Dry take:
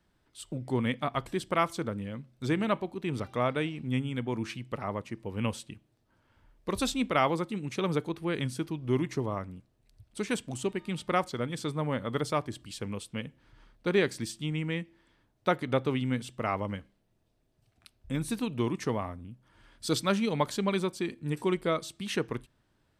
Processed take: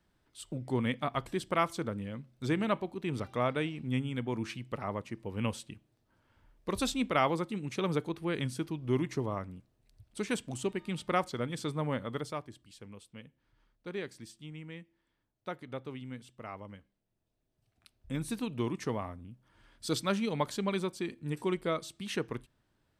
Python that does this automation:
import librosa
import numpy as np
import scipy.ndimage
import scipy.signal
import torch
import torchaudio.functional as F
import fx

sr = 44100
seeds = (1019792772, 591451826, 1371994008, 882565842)

y = fx.gain(x, sr, db=fx.line((11.93, -2.0), (12.61, -13.0), (16.77, -13.0), (18.13, -3.5)))